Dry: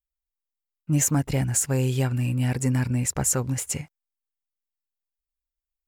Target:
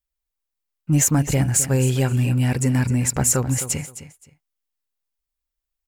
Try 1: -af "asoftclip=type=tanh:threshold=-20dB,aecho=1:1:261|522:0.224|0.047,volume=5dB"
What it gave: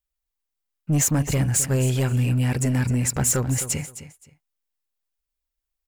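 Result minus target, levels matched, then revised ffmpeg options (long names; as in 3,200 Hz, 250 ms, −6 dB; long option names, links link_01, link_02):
soft clipping: distortion +14 dB
-af "asoftclip=type=tanh:threshold=-10.5dB,aecho=1:1:261|522:0.224|0.047,volume=5dB"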